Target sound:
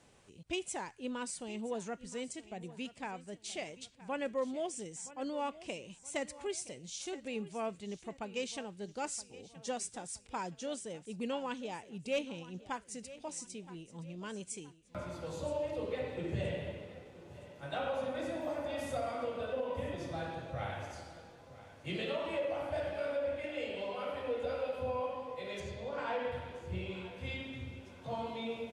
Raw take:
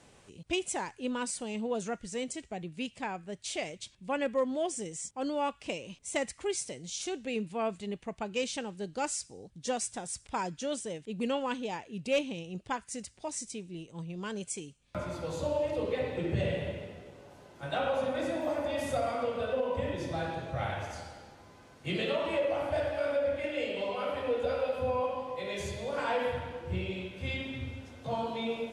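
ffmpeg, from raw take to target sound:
ffmpeg -i in.wav -filter_complex "[0:a]aecho=1:1:971|1942|2913:0.141|0.0537|0.0204,asettb=1/sr,asplit=3[link_01][link_02][link_03];[link_01]atrim=end=25.604[link_04];[link_02]atrim=start=25.6:end=26.32,asetpts=PTS-STARTPTS,afade=type=in:duration=0.004:curve=qsin,afade=type=out:start_time=0.716:duration=0.004:curve=qsin,adynamicsmooth=sensitivity=3:basefreq=5100[link_05];[link_03]atrim=start=26.316[link_06];[link_04][link_05]acrossfade=duration=0.004:curve1=hsin:curve2=qsin[link_07];[link_07][link_06]acrossfade=duration=0.004:curve1=qsin:curve2=hsin,volume=-5.5dB" out.wav

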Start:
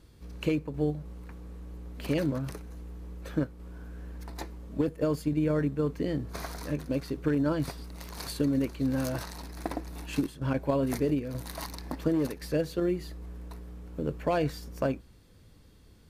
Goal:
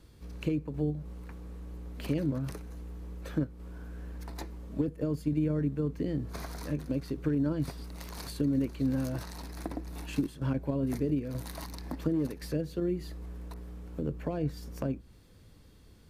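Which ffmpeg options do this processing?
ffmpeg -i in.wav -filter_complex "[0:a]acrossover=split=370[link_01][link_02];[link_02]acompressor=threshold=-41dB:ratio=5[link_03];[link_01][link_03]amix=inputs=2:normalize=0,asettb=1/sr,asplit=3[link_04][link_05][link_06];[link_04]atrim=end=13.544[link_07];[link_05]atrim=start=13.54:end=14.57,asetpts=PTS-STARTPTS,afade=type=in:duration=0.004:curve=qsin,afade=type=out:start_time=1.026:duration=0.004:curve=qsin,adynamicequalizer=threshold=0.002:dfrequency=1500:dqfactor=0.7:tfrequency=1500:tqfactor=0.7:attack=5:release=100:ratio=0.375:range=2:mode=cutabove:tftype=highshelf[link_08];[link_06]atrim=start=14.566[link_09];[link_07][link_08]acrossfade=duration=0.004:curve1=hsin:curve2=qsin[link_10];[link_10][link_09]acrossfade=duration=0.004:curve1=qsin:curve2=hsin" out.wav

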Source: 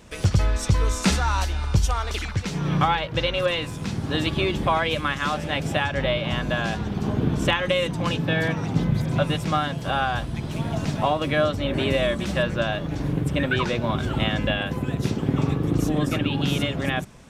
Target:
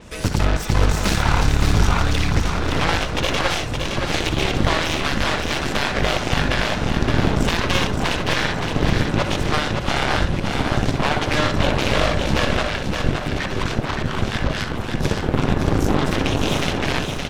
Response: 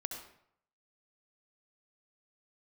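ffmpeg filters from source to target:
-filter_complex "[0:a]asubboost=boost=6:cutoff=71,alimiter=limit=-13.5dB:level=0:latency=1:release=44,aeval=exprs='0.211*(cos(1*acos(clip(val(0)/0.211,-1,1)))-cos(1*PI/2))+0.0596*(cos(2*acos(clip(val(0)/0.211,-1,1)))-cos(2*PI/2))+0.0668*(cos(3*acos(clip(val(0)/0.211,-1,1)))-cos(3*PI/2))+0.0422*(cos(7*acos(clip(val(0)/0.211,-1,1)))-cos(7*PI/2))':channel_layout=same,asettb=1/sr,asplit=3[link_01][link_02][link_03];[link_01]atrim=end=12.624[link_04];[link_02]atrim=start=12.62:end=15.02,asetpts=PTS-STARTPTS,afade=type=in:duration=0.004:curve=qsin,afade=type=out:start_time=2.396:duration=0.004:curve=qsin,acrossover=split=710[link_05][link_06];[link_05]aeval=exprs='val(0)*(1-1/2+1/2*cos(2*PI*4.3*n/s))':channel_layout=same[link_07];[link_06]aeval=exprs='val(0)*(1-1/2-1/2*cos(2*PI*4.3*n/s))':channel_layout=same[link_08];[link_07][link_08]amix=inputs=2:normalize=0[link_09];[link_03]atrim=start=15.016[link_10];[link_04][link_09]acrossfade=duration=0.004:curve1=hsin:curve2=qsin[link_11];[link_11][link_10]acrossfade=duration=0.004:curve1=qsin:curve2=hsin,aecho=1:1:568|1136|1704|2272|2840:0.562|0.236|0.0992|0.0417|0.0175[link_12];[1:a]atrim=start_sample=2205,atrim=end_sample=3087[link_13];[link_12][link_13]afir=irnorm=-1:irlink=0,adynamicequalizer=threshold=0.00447:dfrequency=6900:dqfactor=0.7:tfrequency=6900:tqfactor=0.7:attack=5:release=100:ratio=0.375:range=4:mode=cutabove:tftype=highshelf,volume=5.5dB"

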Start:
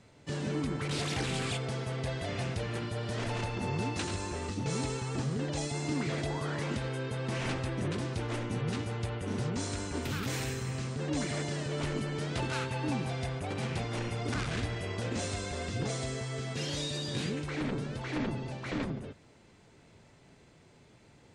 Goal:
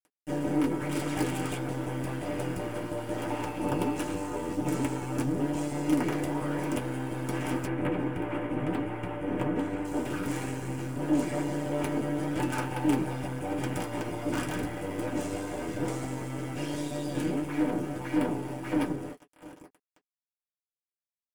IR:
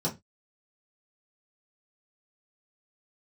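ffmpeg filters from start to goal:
-filter_complex "[0:a]asplit=2[link_01][link_02];[link_02]adelay=699.7,volume=-19dB,highshelf=frequency=4000:gain=-15.7[link_03];[link_01][link_03]amix=inputs=2:normalize=0,acrusher=bits=5:dc=4:mix=0:aa=0.000001,asettb=1/sr,asplit=3[link_04][link_05][link_06];[link_04]atrim=end=7.664[link_07];[link_05]atrim=start=7.66:end=9.85,asetpts=PTS-STARTPTS,afade=type=in:duration=0.004:curve=qsin,afade=type=out:start_time=2.186:duration=0.004:curve=qsin,highshelf=frequency=3600:width_type=q:width=1.5:gain=-12[link_08];[link_06]atrim=start=9.846[link_09];[link_07][link_08]acrossfade=duration=0.004:curve1=hsin:curve2=qsin[link_10];[link_10][link_09]acrossfade=duration=0.004:curve1=qsin:curve2=hsin[link_11];[1:a]atrim=start_sample=2205,afade=type=out:start_time=0.14:duration=0.01,atrim=end_sample=6615,asetrate=83790,aresample=44100[link_12];[link_11][link_12]afir=irnorm=-1:irlink=0"

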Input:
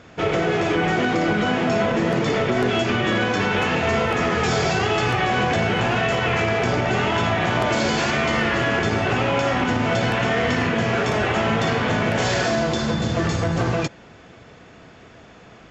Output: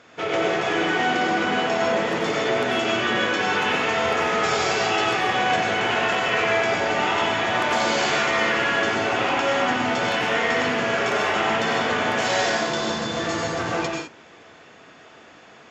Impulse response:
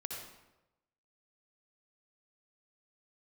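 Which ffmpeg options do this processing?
-filter_complex "[0:a]highpass=frequency=530:poles=1[link_01];[1:a]atrim=start_sample=2205,afade=type=out:start_time=0.19:duration=0.01,atrim=end_sample=8820,asetrate=29106,aresample=44100[link_02];[link_01][link_02]afir=irnorm=-1:irlink=0"

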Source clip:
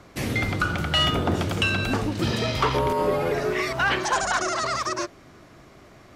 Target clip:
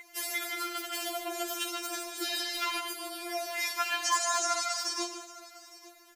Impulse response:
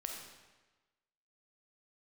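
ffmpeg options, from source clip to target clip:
-filter_complex "[0:a]asettb=1/sr,asplit=3[link_01][link_02][link_03];[link_01]atrim=end=3.154[link_04];[link_02]atrim=start=3.15:end=4.23,asetpts=PTS-STARTPTS,afade=type=in:duration=0.004:curve=qsin,afade=type=out:start_time=1.076:duration=0.004:curve=qsin,lowshelf=frequency=240:gain=-11[link_05];[link_03]atrim=start=4.226[link_06];[link_04][link_05]acrossfade=duration=0.004:curve1=hsin:curve2=qsin[link_07];[link_07][link_06]acrossfade=duration=0.004:curve1=qsin:curve2=hsin,aeval=exprs='val(0)+0.0282*sin(2*PI*2100*n/s)':channel_layout=same,aemphasis=mode=production:type=riaa,aecho=1:1:151|857:0.316|0.112,asplit=2[link_08][link_09];[1:a]atrim=start_sample=2205,adelay=10[link_10];[link_09][link_10]afir=irnorm=-1:irlink=0,volume=-7.5dB[link_11];[link_08][link_11]amix=inputs=2:normalize=0,afftfilt=real='re*4*eq(mod(b,16),0)':imag='im*4*eq(mod(b,16),0)':win_size=2048:overlap=0.75,volume=-7dB"

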